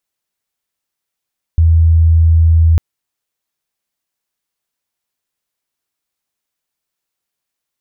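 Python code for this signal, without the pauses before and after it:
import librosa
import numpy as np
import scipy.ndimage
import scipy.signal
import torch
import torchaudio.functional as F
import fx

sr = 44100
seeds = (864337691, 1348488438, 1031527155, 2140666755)

y = 10.0 ** (-5.5 / 20.0) * np.sin(2.0 * np.pi * (81.8 * (np.arange(round(1.2 * sr)) / sr)))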